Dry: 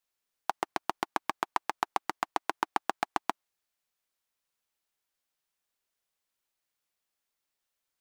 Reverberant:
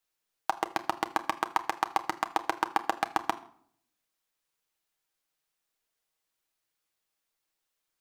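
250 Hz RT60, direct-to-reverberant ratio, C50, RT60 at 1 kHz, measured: 0.75 s, 6.5 dB, 17.0 dB, 0.60 s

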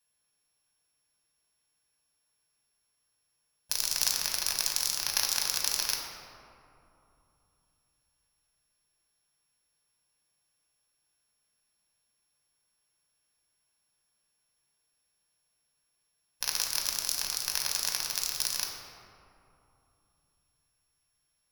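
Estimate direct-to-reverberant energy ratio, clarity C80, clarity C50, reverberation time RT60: 0.0 dB, 4.0 dB, 2.5 dB, 3.0 s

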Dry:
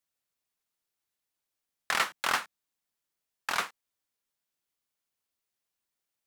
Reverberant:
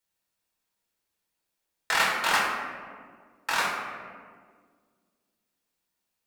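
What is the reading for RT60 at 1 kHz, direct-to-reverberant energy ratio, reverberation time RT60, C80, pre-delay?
1.6 s, −4.0 dB, 1.8 s, 3.5 dB, 3 ms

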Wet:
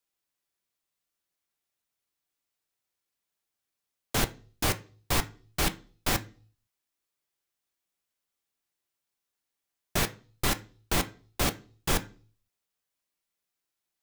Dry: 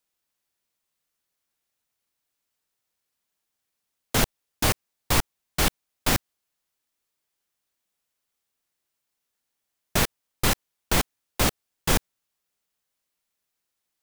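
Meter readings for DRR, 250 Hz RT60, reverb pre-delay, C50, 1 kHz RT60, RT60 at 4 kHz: 7.0 dB, 0.50 s, 3 ms, 19.0 dB, 0.35 s, 0.40 s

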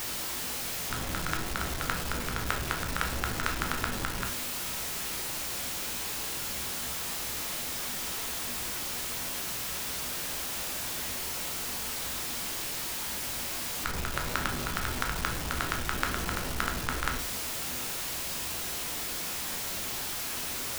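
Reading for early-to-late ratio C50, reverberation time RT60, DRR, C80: 8.5 dB, 0.45 s, 2.0 dB, 13.0 dB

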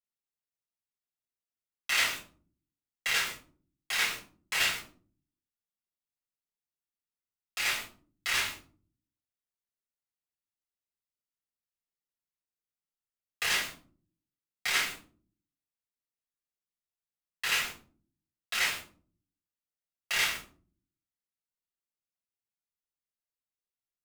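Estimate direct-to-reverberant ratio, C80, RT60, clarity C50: −5.5 dB, 13.0 dB, 0.45 s, 8.0 dB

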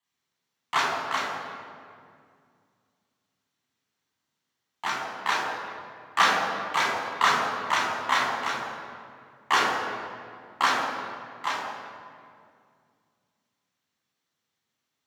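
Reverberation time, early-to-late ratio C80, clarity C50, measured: 2.2 s, 2.5 dB, 1.0 dB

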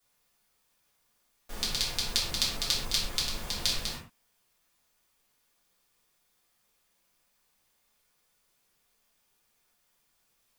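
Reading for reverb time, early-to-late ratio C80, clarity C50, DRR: non-exponential decay, 7.5 dB, 3.5 dB, −7.5 dB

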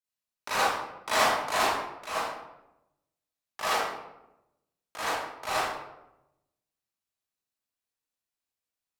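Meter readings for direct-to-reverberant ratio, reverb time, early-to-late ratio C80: −12.5 dB, 0.90 s, 2.0 dB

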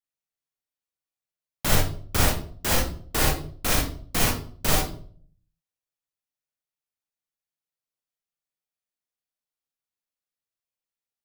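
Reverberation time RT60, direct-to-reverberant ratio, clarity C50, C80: 0.50 s, −2.5 dB, 2.0 dB, 9.5 dB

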